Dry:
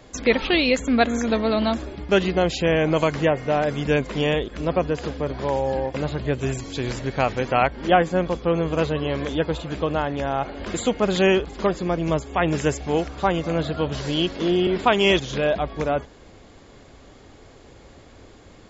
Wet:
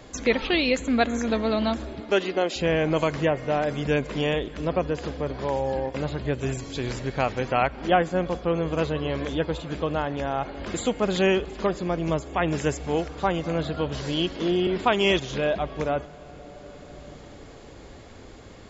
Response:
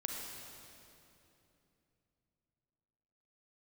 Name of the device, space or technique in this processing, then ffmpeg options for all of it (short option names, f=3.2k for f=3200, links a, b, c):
ducked reverb: -filter_complex "[0:a]asettb=1/sr,asplit=3[a][b][c];[a]atrim=end=2.004[d];[b]atrim=start=2:end=2.56,asetpts=PTS-STARTPTS,afade=t=in:d=0.004:c=qsin,afade=t=out:st=0.556:d=0.004:c=qsin,highpass=f=240:w=0.5412,highpass=f=240:w=1.3066[e];[c]atrim=start=2.556[f];[d][e]acrossfade=d=0.004:c1=hsin:c2=qsin[g];[g][f]acrossfade=d=0.004:c1=qsin:c2=hsin,asplit=3[h][i][j];[1:a]atrim=start_sample=2205[k];[i][k]afir=irnorm=-1:irlink=0[l];[j]apad=whole_len=824332[m];[l][m]sidechaincompress=threshold=-44dB:ratio=3:attack=16:release=729,volume=2dB[n];[h][n]amix=inputs=2:normalize=0,volume=-4dB"